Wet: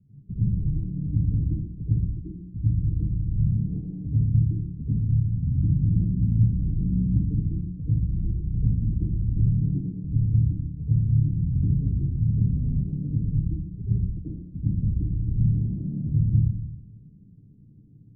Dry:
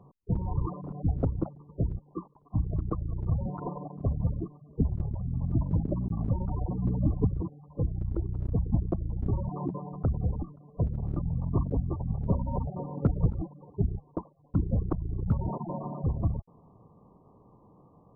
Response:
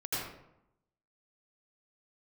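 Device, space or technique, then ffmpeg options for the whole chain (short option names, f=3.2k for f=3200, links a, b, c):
club heard from the street: -filter_complex "[0:a]alimiter=limit=-21dB:level=0:latency=1:release=209,lowpass=f=230:w=0.5412,lowpass=f=230:w=1.3066[a];[1:a]atrim=start_sample=2205[b];[a][b]afir=irnorm=-1:irlink=0,volume=1.5dB"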